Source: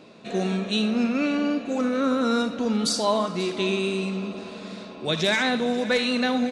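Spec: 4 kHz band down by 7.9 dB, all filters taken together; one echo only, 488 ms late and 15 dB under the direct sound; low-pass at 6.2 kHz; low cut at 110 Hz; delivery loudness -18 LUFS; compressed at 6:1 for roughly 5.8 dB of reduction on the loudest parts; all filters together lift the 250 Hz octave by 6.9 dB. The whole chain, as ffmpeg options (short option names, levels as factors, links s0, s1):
-af "highpass=110,lowpass=6200,equalizer=f=250:t=o:g=8,equalizer=f=4000:t=o:g=-8.5,acompressor=threshold=0.112:ratio=6,aecho=1:1:488:0.178,volume=1.88"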